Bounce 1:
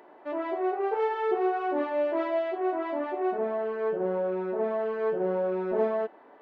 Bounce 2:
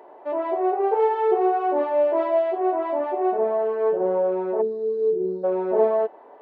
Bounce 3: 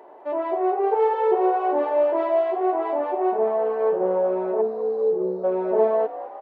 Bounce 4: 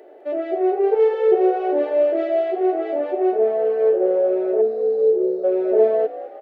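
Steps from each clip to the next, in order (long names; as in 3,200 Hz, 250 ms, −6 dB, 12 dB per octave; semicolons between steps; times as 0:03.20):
flat-topped bell 630 Hz +8.5 dB; gain on a spectral selection 0:04.62–0:05.44, 460–3,600 Hz −27 dB; level −1 dB
echo with shifted repeats 206 ms, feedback 62%, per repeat +63 Hz, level −15 dB
phaser with its sweep stopped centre 410 Hz, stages 4; level +5 dB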